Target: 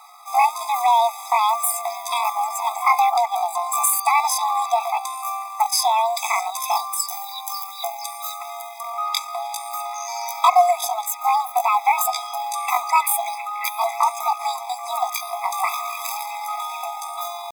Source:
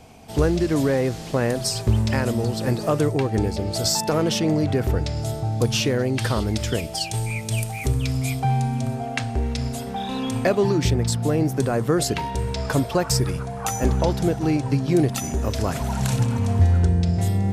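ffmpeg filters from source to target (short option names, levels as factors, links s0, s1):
-af "acrusher=bits=7:mode=log:mix=0:aa=0.000001,asetrate=78577,aresample=44100,atempo=0.561231,afftfilt=real='re*eq(mod(floor(b*sr/1024/660),2),1)':imag='im*eq(mod(floor(b*sr/1024/660),2),1)':win_size=1024:overlap=0.75,volume=2.24"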